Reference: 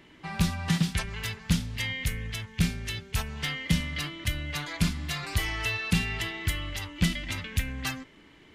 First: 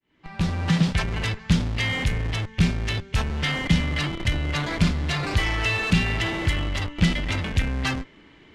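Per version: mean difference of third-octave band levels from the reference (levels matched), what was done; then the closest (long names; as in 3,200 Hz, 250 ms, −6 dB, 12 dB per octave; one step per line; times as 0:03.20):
5.0 dB: fade in at the beginning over 0.80 s
in parallel at −4 dB: comparator with hysteresis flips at −35 dBFS
on the sum: high-frequency loss of the air 77 metres
level +4 dB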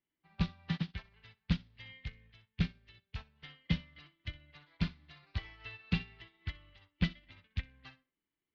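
13.5 dB: Butterworth low-pass 4,500 Hz 36 dB per octave
on a send: feedback echo with a high-pass in the loop 63 ms, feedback 27%, high-pass 200 Hz, level −9 dB
on the sum: expander for the loud parts 2.5 to 1, over −42 dBFS
level −4.5 dB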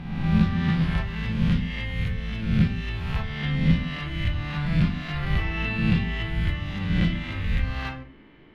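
7.5 dB: peak hold with a rise ahead of every peak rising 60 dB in 1.29 s
high-frequency loss of the air 380 metres
rectangular room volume 270 cubic metres, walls furnished, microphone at 0.9 metres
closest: first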